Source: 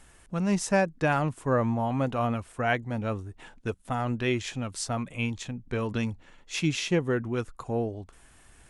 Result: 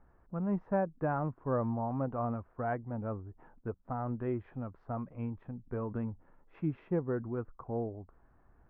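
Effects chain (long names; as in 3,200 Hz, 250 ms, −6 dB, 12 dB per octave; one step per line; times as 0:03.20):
low-pass filter 1,300 Hz 24 dB per octave
level −6.5 dB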